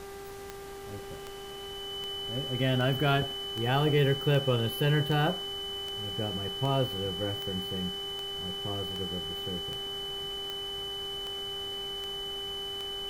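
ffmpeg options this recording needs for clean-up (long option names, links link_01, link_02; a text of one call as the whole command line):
ffmpeg -i in.wav -af "adeclick=threshold=4,bandreject=frequency=396.1:width_type=h:width=4,bandreject=frequency=792.2:width_type=h:width=4,bandreject=frequency=1188.3:width_type=h:width=4,bandreject=frequency=1584.4:width_type=h:width=4,bandreject=frequency=1980.5:width_type=h:width=4,bandreject=frequency=3000:width=30,afftdn=noise_reduction=30:noise_floor=-42" out.wav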